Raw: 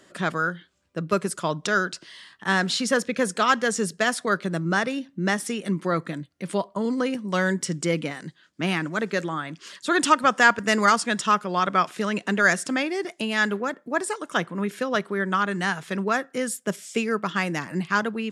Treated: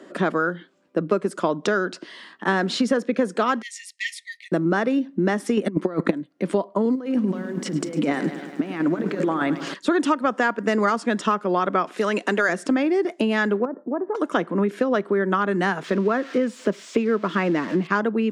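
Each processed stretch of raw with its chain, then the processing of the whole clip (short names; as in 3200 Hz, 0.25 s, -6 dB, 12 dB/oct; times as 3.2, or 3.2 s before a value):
3.62–4.52 brick-wall FIR high-pass 1800 Hz + bell 6300 Hz -4.5 dB 2.1 oct + notch 3000 Hz, Q 24
5.57–6.11 low shelf 130 Hz +4 dB + negative-ratio compressor -28 dBFS, ratio -0.5 + transient shaper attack +9 dB, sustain -2 dB
6.95–9.74 negative-ratio compressor -31 dBFS, ratio -0.5 + lo-fi delay 0.104 s, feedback 80%, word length 8-bit, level -13 dB
11.97–12.49 HPF 500 Hz 6 dB/oct + high shelf 5200 Hz +9.5 dB
13.65–14.15 LPF 1200 Hz 24 dB/oct + compressor 2:1, threshold -40 dBFS
15.84–17.87 switching spikes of -22 dBFS + air absorption 150 m + notch 800 Hz, Q 6.9
whole clip: HPF 250 Hz 24 dB/oct; tilt -4 dB/oct; compressor 5:1, threshold -26 dBFS; gain +8 dB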